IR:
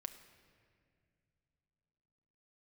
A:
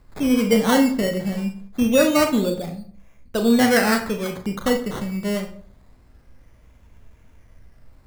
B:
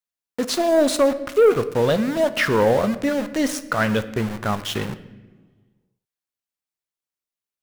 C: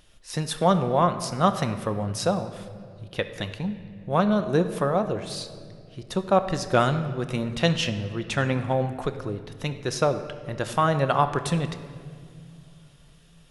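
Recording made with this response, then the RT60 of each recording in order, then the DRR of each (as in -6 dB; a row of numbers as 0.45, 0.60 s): C; 0.55 s, not exponential, not exponential; 5.0, 11.5, 8.0 dB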